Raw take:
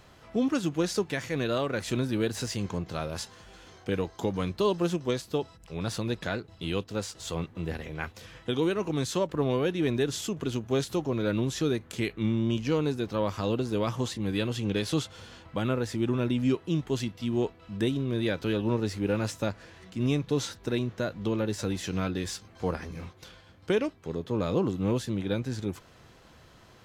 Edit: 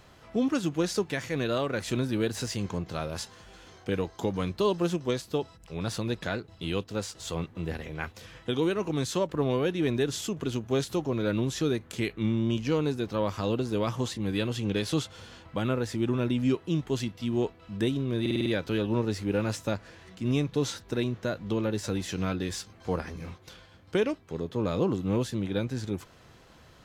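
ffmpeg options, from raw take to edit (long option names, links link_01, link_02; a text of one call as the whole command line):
ffmpeg -i in.wav -filter_complex "[0:a]asplit=6[link_01][link_02][link_03][link_04][link_05][link_06];[link_01]atrim=end=18.262[link_07];[link_02]atrim=start=18.208:end=18.262[link_08];[link_03]atrim=start=18.208:end=18.262[link_09];[link_04]atrim=start=18.208:end=18.262[link_10];[link_05]atrim=start=18.208:end=18.262[link_11];[link_06]atrim=start=18.208[link_12];[link_07][link_08]acrossfade=duration=0.004:curve1=hsin:curve2=hsin[link_13];[link_13][link_09]acrossfade=duration=0.004:curve1=hsin:curve2=hsin[link_14];[link_14][link_10]acrossfade=duration=0.004:curve1=hsin:curve2=hsin[link_15];[link_15][link_11]acrossfade=duration=0.004:curve1=hsin:curve2=hsin[link_16];[link_16][link_12]acrossfade=duration=0.004:curve1=hsin:curve2=hsin" out.wav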